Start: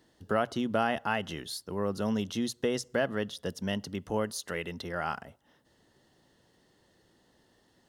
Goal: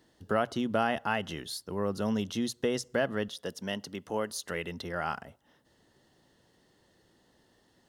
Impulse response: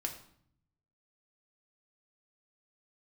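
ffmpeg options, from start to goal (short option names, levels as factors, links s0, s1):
-filter_complex "[0:a]asettb=1/sr,asplit=3[s0][s1][s2];[s0]atrim=end=3.284[s3];[s1]atrim=start=3.28:end=4.31,asetpts=PTS-STARTPTS,afade=t=in:d=0.004:c=qsin,afade=t=out:st=1.026:d=0.004:c=qsin,highpass=f=280:p=1[s4];[s2]atrim=start=4.306[s5];[s3][s4]acrossfade=d=0.004:c1=hsin:c2=qsin[s6];[s6][s5]acrossfade=d=0.004:c1=qsin:c2=hsin"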